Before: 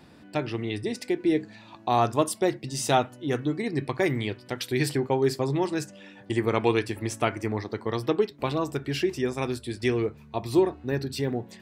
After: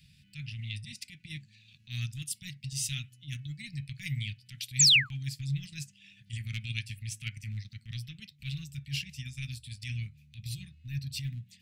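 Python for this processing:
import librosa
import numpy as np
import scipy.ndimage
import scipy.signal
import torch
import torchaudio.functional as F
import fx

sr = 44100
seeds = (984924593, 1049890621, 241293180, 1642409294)

y = fx.transient(x, sr, attack_db=-10, sustain_db=-6)
y = fx.spec_paint(y, sr, seeds[0], shape='fall', start_s=4.79, length_s=0.36, low_hz=730.0, high_hz=8100.0, level_db=-19.0)
y = scipy.signal.sosfilt(scipy.signal.ellip(3, 1.0, 50, [150.0, 2500.0], 'bandstop', fs=sr, output='sos'), y)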